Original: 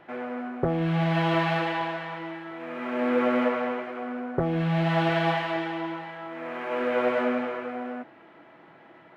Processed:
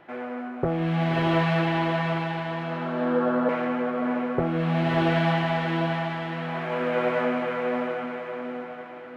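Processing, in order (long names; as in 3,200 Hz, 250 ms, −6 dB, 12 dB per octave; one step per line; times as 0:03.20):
0:02.12–0:03.49: Butterworth low-pass 1,700 Hz 72 dB per octave
feedback delay with all-pass diffusion 608 ms, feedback 47%, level −4.5 dB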